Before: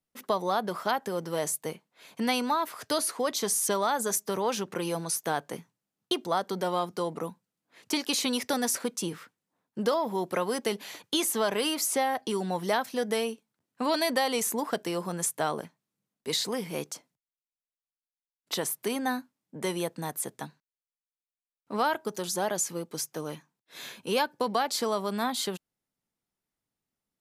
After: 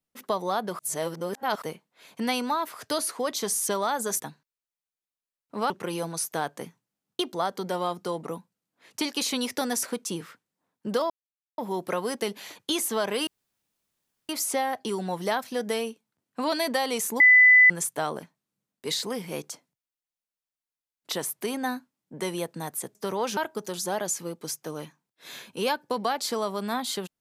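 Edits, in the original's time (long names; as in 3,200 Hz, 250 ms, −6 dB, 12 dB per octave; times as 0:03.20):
0:00.79–0:01.62: reverse
0:04.20–0:04.62: swap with 0:20.37–0:21.87
0:10.02: splice in silence 0.48 s
0:11.71: splice in room tone 1.02 s
0:14.62–0:15.12: beep over 2,000 Hz −11.5 dBFS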